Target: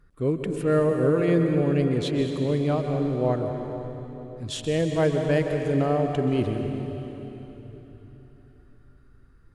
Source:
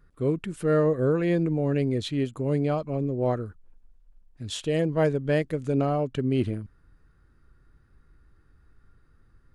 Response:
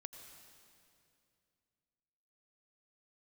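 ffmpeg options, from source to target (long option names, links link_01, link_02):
-filter_complex "[1:a]atrim=start_sample=2205,asetrate=28665,aresample=44100[link_01];[0:a][link_01]afir=irnorm=-1:irlink=0,volume=4.5dB"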